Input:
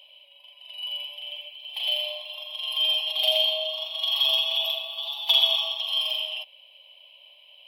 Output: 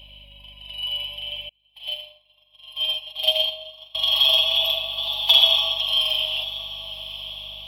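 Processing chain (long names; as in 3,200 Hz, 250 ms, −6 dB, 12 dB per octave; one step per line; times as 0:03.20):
hum with harmonics 50 Hz, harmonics 5, −55 dBFS −9 dB per octave
feedback delay with all-pass diffusion 1,040 ms, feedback 50%, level −14 dB
0:01.49–0:03.95: expander for the loud parts 2.5 to 1, over −39 dBFS
level +5 dB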